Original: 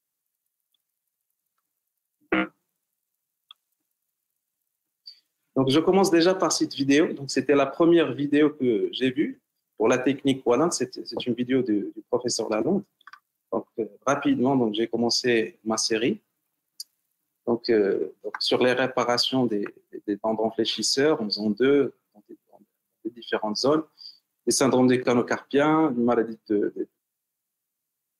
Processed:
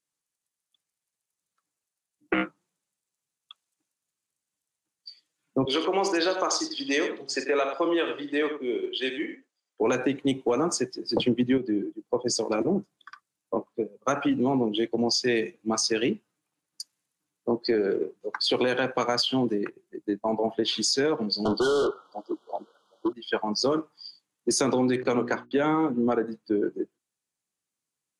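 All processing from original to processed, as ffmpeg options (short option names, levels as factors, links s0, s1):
-filter_complex "[0:a]asettb=1/sr,asplit=3[s0][s1][s2];[s0]atrim=end=5.654[s3];[s1]atrim=start=5.65:end=9.81,asetpts=PTS-STARTPTS,afade=t=in:d=0.004:c=qsin,afade=t=out:st=4.156:d=0.004:c=qsin,highpass=490,lowpass=7300,aecho=1:1:41|92:0.266|0.335,atrim=end_sample=183456[s4];[s2]atrim=start=9.806[s5];[s3][s4]acrossfade=d=0.004:c1=hsin:c2=qsin[s6];[s6][s5]acrossfade=d=0.004:c1=qsin:c2=hsin,asettb=1/sr,asplit=3[s7][s8][s9];[s7]atrim=end=11.094[s10];[s8]atrim=start=11.09:end=11.58,asetpts=PTS-STARTPTS,afade=t=in:d=0.004:c=qsin,afade=t=out:st=0.486:d=0.004:c=qsin,lowshelf=f=350:g=5.5,acontrast=51[s11];[s9]atrim=start=11.576[s12];[s10][s11]acrossfade=d=0.004:c1=hsin:c2=qsin[s13];[s13][s12]acrossfade=d=0.004:c1=qsin:c2=hsin,asettb=1/sr,asplit=3[s14][s15][s16];[s14]atrim=end=21.454[s17];[s15]atrim=start=21.45:end=23.13,asetpts=PTS-STARTPTS,afade=t=in:d=0.004:c=qsin,afade=t=out:st=1.676:d=0.004:c=qsin,acrossover=split=380 3800:gain=0.2 1 0.0794[s18][s19][s20];[s18][s19][s20]amix=inputs=3:normalize=0,asplit=2[s21][s22];[s22]highpass=f=720:p=1,volume=56.2,asoftclip=type=tanh:threshold=0.178[s23];[s21][s23]amix=inputs=2:normalize=0,lowpass=f=4600:p=1,volume=0.501,asuperstop=centerf=2100:order=20:qfactor=1.4[s24];[s16]atrim=start=23.126[s25];[s17][s24]acrossfade=d=0.004:c1=hsin:c2=qsin[s26];[s26][s25]acrossfade=d=0.004:c1=qsin:c2=hsin,asettb=1/sr,asplit=3[s27][s28][s29];[s27]atrim=end=24.964[s30];[s28]atrim=start=24.96:end=25.65,asetpts=PTS-STARTPTS,afade=t=in:d=0.004:c=qsin,afade=t=out:st=0.686:d=0.004:c=qsin,lowpass=f=3700:p=1,agate=range=0.0224:threshold=0.00562:ratio=3:release=100:detection=peak,bandreject=f=60:t=h:w=6,bandreject=f=120:t=h:w=6,bandreject=f=180:t=h:w=6,bandreject=f=240:t=h:w=6,bandreject=f=300:t=h:w=6,bandreject=f=360:t=h:w=6[s31];[s29]atrim=start=25.646[s32];[s30][s31]acrossfade=d=0.004:c1=hsin:c2=qsin[s33];[s33][s32]acrossfade=d=0.004:c1=qsin:c2=hsin,lowpass=f=9700:w=0.5412,lowpass=f=9700:w=1.3066,bandreject=f=640:w=21,acompressor=threshold=0.1:ratio=6"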